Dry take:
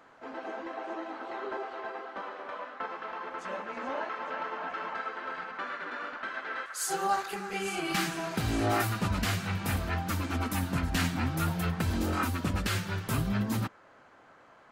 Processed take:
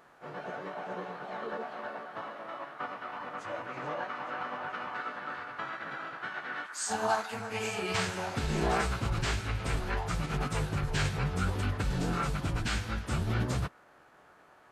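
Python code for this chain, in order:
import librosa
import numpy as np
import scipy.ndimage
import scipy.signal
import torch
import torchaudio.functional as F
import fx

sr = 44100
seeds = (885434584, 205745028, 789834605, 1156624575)

y = fx.quant_dither(x, sr, seeds[0], bits=12, dither='none')
y = fx.pitch_keep_formants(y, sr, semitones=-10.0)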